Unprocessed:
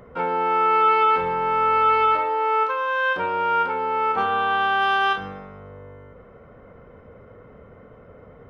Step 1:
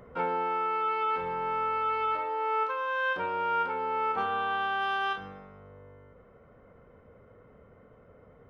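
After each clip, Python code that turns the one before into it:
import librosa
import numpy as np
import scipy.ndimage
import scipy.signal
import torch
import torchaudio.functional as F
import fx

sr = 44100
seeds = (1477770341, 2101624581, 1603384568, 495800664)

y = fx.rider(x, sr, range_db=10, speed_s=0.5)
y = F.gain(torch.from_numpy(y), -9.0).numpy()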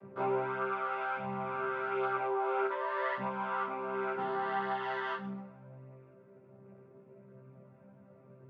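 y = fx.chord_vocoder(x, sr, chord='bare fifth', root=48)
y = fx.detune_double(y, sr, cents=13)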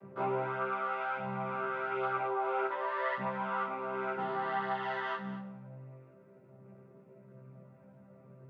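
y = x + 10.0 ** (-14.0 / 20.0) * np.pad(x, (int(225 * sr / 1000.0), 0))[:len(x)]
y = fx.room_shoebox(y, sr, seeds[0], volume_m3=2400.0, walls='furnished', distance_m=0.67)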